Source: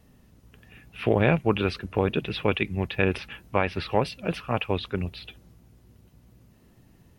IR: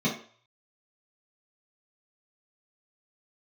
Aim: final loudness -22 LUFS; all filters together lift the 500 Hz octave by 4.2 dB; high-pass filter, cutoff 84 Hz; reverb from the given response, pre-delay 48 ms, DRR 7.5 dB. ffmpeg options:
-filter_complex "[0:a]highpass=84,equalizer=f=500:t=o:g=5,asplit=2[s0][s1];[1:a]atrim=start_sample=2205,adelay=48[s2];[s1][s2]afir=irnorm=-1:irlink=0,volume=0.126[s3];[s0][s3]amix=inputs=2:normalize=0,volume=1.06"

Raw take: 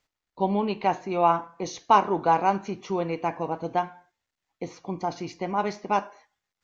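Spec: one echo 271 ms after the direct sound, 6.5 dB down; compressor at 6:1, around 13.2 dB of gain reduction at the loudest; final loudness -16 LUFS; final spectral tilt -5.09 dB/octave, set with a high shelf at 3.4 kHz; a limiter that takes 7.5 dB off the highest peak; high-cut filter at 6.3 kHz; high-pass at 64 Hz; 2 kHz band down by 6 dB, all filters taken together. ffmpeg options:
-af "highpass=64,lowpass=6300,equalizer=f=2000:t=o:g=-7,highshelf=f=3400:g=-6.5,acompressor=threshold=0.0355:ratio=6,alimiter=level_in=1.06:limit=0.0631:level=0:latency=1,volume=0.944,aecho=1:1:271:0.473,volume=10.6"

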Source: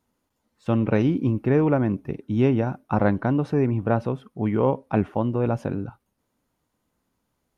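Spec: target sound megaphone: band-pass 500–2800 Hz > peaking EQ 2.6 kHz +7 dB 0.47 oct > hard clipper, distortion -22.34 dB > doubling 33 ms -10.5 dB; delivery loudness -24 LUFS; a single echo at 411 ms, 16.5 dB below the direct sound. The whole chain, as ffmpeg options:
-filter_complex "[0:a]highpass=500,lowpass=2800,equalizer=f=2600:t=o:w=0.47:g=7,aecho=1:1:411:0.15,asoftclip=type=hard:threshold=0.178,asplit=2[s0][s1];[s1]adelay=33,volume=0.299[s2];[s0][s2]amix=inputs=2:normalize=0,volume=2"

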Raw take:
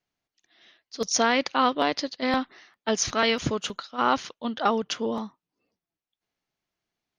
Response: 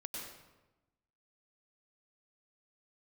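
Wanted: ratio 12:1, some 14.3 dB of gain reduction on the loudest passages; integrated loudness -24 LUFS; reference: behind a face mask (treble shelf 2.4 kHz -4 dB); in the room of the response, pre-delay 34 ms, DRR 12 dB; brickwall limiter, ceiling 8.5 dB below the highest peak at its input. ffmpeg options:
-filter_complex "[0:a]acompressor=threshold=0.0282:ratio=12,alimiter=level_in=1.26:limit=0.0631:level=0:latency=1,volume=0.794,asplit=2[s0][s1];[1:a]atrim=start_sample=2205,adelay=34[s2];[s1][s2]afir=irnorm=-1:irlink=0,volume=0.282[s3];[s0][s3]amix=inputs=2:normalize=0,highshelf=f=2400:g=-4,volume=6.31"

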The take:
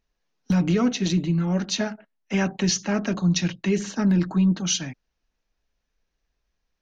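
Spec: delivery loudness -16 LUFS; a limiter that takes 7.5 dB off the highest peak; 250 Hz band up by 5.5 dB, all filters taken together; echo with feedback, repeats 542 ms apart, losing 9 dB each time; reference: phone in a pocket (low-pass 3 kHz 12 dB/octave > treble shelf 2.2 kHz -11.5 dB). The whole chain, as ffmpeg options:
-af "equalizer=f=250:t=o:g=8.5,alimiter=limit=0.237:level=0:latency=1,lowpass=3000,highshelf=f=2200:g=-11.5,aecho=1:1:542|1084|1626|2168:0.355|0.124|0.0435|0.0152,volume=2"

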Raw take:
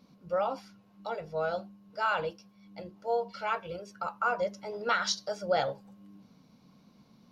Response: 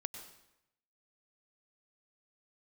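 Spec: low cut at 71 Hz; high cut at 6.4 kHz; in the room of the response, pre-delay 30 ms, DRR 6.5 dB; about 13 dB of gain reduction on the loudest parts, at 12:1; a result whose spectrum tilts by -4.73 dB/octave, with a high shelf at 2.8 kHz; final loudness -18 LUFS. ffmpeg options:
-filter_complex "[0:a]highpass=71,lowpass=6400,highshelf=f=2800:g=-5,acompressor=threshold=0.0158:ratio=12,asplit=2[s0][s1];[1:a]atrim=start_sample=2205,adelay=30[s2];[s1][s2]afir=irnorm=-1:irlink=0,volume=0.562[s3];[s0][s3]amix=inputs=2:normalize=0,volume=15"

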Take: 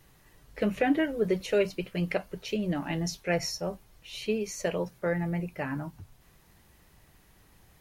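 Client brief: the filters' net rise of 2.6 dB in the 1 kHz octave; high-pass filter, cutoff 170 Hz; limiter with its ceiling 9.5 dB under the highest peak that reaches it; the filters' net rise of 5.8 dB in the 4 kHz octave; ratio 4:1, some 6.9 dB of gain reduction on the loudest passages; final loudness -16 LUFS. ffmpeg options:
-af "highpass=170,equalizer=f=1000:t=o:g=3.5,equalizer=f=4000:t=o:g=8.5,acompressor=threshold=0.0398:ratio=4,volume=10,alimiter=limit=0.501:level=0:latency=1"

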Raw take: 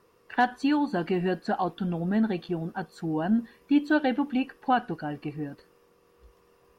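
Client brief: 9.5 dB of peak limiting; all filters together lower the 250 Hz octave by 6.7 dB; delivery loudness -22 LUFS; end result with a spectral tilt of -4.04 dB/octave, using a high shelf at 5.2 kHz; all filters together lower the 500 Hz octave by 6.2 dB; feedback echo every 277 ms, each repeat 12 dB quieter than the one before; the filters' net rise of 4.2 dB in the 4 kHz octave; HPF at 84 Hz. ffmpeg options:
-af "highpass=84,equalizer=f=250:t=o:g=-6.5,equalizer=f=500:t=o:g=-6.5,equalizer=f=4000:t=o:g=4,highshelf=f=5200:g=5,alimiter=limit=0.0708:level=0:latency=1,aecho=1:1:277|554|831:0.251|0.0628|0.0157,volume=4.22"

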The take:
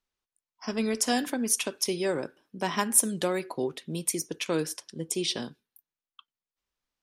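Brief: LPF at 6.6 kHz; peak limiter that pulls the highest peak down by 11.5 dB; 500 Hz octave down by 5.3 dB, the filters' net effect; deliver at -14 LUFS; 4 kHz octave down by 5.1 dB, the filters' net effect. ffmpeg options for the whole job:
-af "lowpass=6600,equalizer=f=500:t=o:g=-7,equalizer=f=4000:t=o:g=-6,volume=14.1,alimiter=limit=0.708:level=0:latency=1"

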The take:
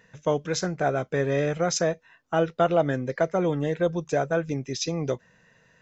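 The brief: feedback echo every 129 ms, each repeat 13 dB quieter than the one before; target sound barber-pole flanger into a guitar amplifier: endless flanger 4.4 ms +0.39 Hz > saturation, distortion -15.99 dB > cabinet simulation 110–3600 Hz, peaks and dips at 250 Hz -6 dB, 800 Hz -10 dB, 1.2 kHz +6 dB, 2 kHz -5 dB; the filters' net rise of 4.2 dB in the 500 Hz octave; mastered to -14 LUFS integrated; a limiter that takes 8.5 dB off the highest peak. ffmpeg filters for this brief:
-filter_complex "[0:a]equalizer=f=500:t=o:g=6.5,alimiter=limit=0.188:level=0:latency=1,aecho=1:1:129|258|387:0.224|0.0493|0.0108,asplit=2[s0][s1];[s1]adelay=4.4,afreqshift=0.39[s2];[s0][s2]amix=inputs=2:normalize=1,asoftclip=threshold=0.1,highpass=110,equalizer=f=250:t=q:w=4:g=-6,equalizer=f=800:t=q:w=4:g=-10,equalizer=f=1200:t=q:w=4:g=6,equalizer=f=2000:t=q:w=4:g=-5,lowpass=f=3600:w=0.5412,lowpass=f=3600:w=1.3066,volume=7.5"

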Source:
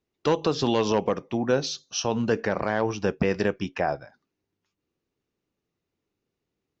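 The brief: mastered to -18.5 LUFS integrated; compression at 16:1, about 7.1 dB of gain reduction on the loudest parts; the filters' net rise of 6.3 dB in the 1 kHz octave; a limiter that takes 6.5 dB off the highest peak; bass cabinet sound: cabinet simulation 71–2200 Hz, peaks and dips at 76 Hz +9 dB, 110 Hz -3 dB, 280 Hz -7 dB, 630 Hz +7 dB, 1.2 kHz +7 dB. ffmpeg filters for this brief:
-af "equalizer=f=1000:t=o:g=4,acompressor=threshold=0.0708:ratio=16,alimiter=limit=0.119:level=0:latency=1,highpass=f=71:w=0.5412,highpass=f=71:w=1.3066,equalizer=f=76:t=q:w=4:g=9,equalizer=f=110:t=q:w=4:g=-3,equalizer=f=280:t=q:w=4:g=-7,equalizer=f=630:t=q:w=4:g=7,equalizer=f=1200:t=q:w=4:g=7,lowpass=f=2200:w=0.5412,lowpass=f=2200:w=1.3066,volume=4.22"

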